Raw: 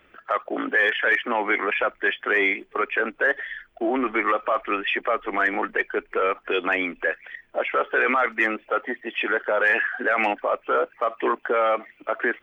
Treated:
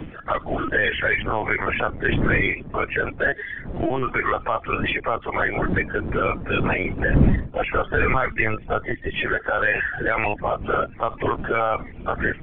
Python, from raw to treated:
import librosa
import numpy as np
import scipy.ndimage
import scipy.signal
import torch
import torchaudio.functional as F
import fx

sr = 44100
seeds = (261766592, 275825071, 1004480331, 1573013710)

y = fx.spec_quant(x, sr, step_db=30)
y = fx.dmg_wind(y, sr, seeds[0], corner_hz=210.0, level_db=-30.0)
y = fx.lpc_vocoder(y, sr, seeds[1], excitation='pitch_kept', order=16)
y = fx.low_shelf(y, sr, hz=160.0, db=11.0, at=(7.0, 9.15))
y = fx.band_squash(y, sr, depth_pct=40)